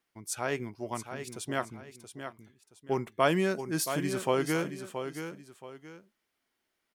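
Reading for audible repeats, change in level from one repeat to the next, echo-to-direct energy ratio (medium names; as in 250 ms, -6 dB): 2, -10.0 dB, -8.5 dB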